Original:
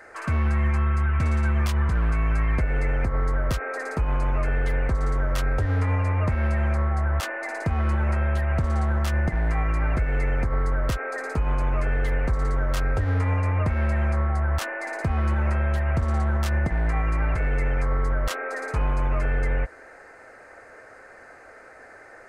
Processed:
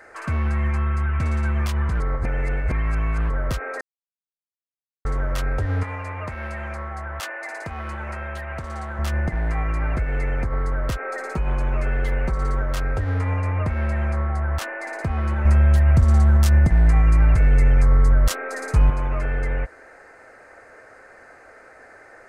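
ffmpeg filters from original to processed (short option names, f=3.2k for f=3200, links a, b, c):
-filter_complex "[0:a]asettb=1/sr,asplit=3[a][b][c];[a]atrim=end=5.834[d];[b]atrim=start=5.83:end=8.99,asetpts=PTS-STARTPTS,afade=t=in:d=0.004:c=qsin,afade=t=out:st=3.156:d=0.004:c=qsin,lowshelf=f=400:g=-11[e];[c]atrim=start=8.986[f];[d][e]acrossfade=d=0.004:c1=hsin:c2=qsin[g];[g][f]acrossfade=d=0.004:c1=qsin:c2=hsin,asettb=1/sr,asplit=3[h][i][j];[h]atrim=end=11.024[k];[i]atrim=start=11.02:end=12.62,asetpts=PTS-STARTPTS,afade=t=in:d=0.004:c=qsin,afade=t=out:st=1.596:d=0.004:c=qsin,aecho=1:1:5.3:0.55,atrim=end_sample=70560[l];[j]atrim=start=12.616[m];[k][l]acrossfade=d=0.004:c1=hsin:c2=qsin[n];[n][m]acrossfade=d=0.004:c1=qsin:c2=hsin,asettb=1/sr,asplit=3[o][p][q];[o]atrim=end=15.454[r];[p]atrim=start=15.45:end=18.9,asetpts=PTS-STARTPTS,afade=t=in:d=0.004:c=qsin,afade=t=out:st=3.446:d=0.004:c=qsin,bass=f=250:g=9,treble=f=4k:g=9[s];[q]atrim=start=18.896[t];[r][s]acrossfade=d=0.004:c1=hsin:c2=qsin[u];[u][t]acrossfade=d=0.004:c1=qsin:c2=hsin,asplit=5[v][w][x][y][z];[v]atrim=end=2.002[aa];[w]atrim=start=1.998:end=3.302,asetpts=PTS-STARTPTS,areverse[ab];[x]atrim=start=3.298:end=3.81,asetpts=PTS-STARTPTS,afade=t=out:st=0.508:d=0.004:c=hsin[ac];[y]atrim=start=3.81:end=5.05,asetpts=PTS-STARTPTS,volume=0[ad];[z]atrim=start=5.05,asetpts=PTS-STARTPTS,afade=t=in:d=0.004:c=hsin[ae];[aa][ab]acrossfade=d=0.004:c1=hsin:c2=hsin[af];[ac][ad][ae]concat=n=3:v=0:a=1[ag];[af][ag]acrossfade=d=0.004:c1=hsin:c2=hsin"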